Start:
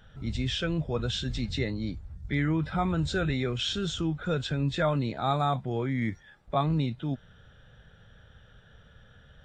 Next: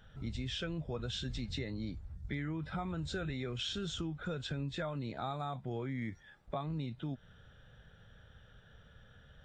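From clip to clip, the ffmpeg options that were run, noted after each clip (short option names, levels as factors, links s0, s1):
-af "acompressor=threshold=0.0282:ratio=6,volume=0.631"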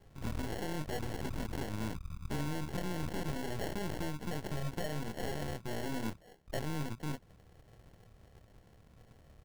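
-filter_complex "[0:a]asplit=2[s0][s1];[s1]adelay=27,volume=0.398[s2];[s0][s2]amix=inputs=2:normalize=0,acrusher=samples=36:mix=1:aa=0.000001,aeval=exprs='0.0531*(cos(1*acos(clip(val(0)/0.0531,-1,1)))-cos(1*PI/2))+0.0119*(cos(8*acos(clip(val(0)/0.0531,-1,1)))-cos(8*PI/2))':c=same,volume=0.841"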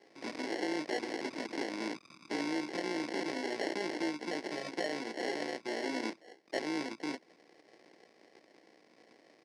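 -af "tremolo=f=57:d=0.462,highpass=f=280:w=0.5412,highpass=f=280:w=1.3066,equalizer=f=320:t=q:w=4:g=6,equalizer=f=1300:t=q:w=4:g=-8,equalizer=f=2100:t=q:w=4:g=8,equalizer=f=3100:t=q:w=4:g=-3,equalizer=f=5000:t=q:w=4:g=8,equalizer=f=7300:t=q:w=4:g=-7,lowpass=f=8200:w=0.5412,lowpass=f=8200:w=1.3066,volume=1.88"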